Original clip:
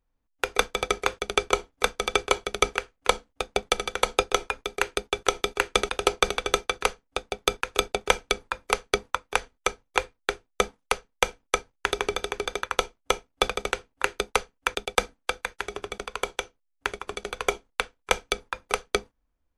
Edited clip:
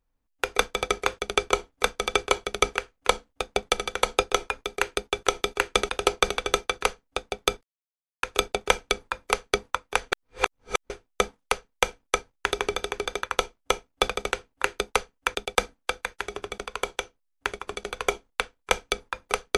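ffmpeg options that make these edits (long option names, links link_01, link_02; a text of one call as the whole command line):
ffmpeg -i in.wav -filter_complex "[0:a]asplit=4[link_01][link_02][link_03][link_04];[link_01]atrim=end=7.63,asetpts=PTS-STARTPTS,afade=type=out:start_time=7.626:duration=0.004:curve=hsin,apad=pad_dur=0.6[link_05];[link_02]atrim=start=7.63:end=9.522,asetpts=PTS-STARTPTS,afade=type=in:duration=0.004:curve=hsin[link_06];[link_03]atrim=start=9.518:end=10.302,asetpts=PTS-STARTPTS,areverse[link_07];[link_04]atrim=start=10.298[link_08];[link_05][link_06]concat=n=2:v=0:a=1[link_09];[link_09][link_07]acrossfade=duration=0.004:curve1=hsin:curve2=hsin[link_10];[link_10][link_08]acrossfade=duration=0.004:curve1=hsin:curve2=hsin" out.wav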